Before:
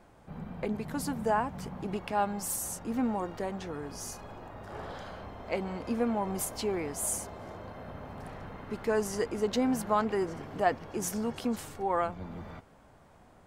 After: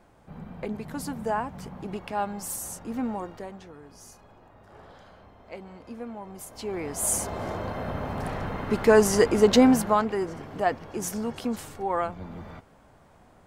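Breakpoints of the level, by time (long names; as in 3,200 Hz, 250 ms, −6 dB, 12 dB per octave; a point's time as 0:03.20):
0:03.17 0 dB
0:03.75 −8.5 dB
0:06.42 −8.5 dB
0:06.76 +0.5 dB
0:07.38 +11.5 dB
0:09.63 +11.5 dB
0:10.10 +2 dB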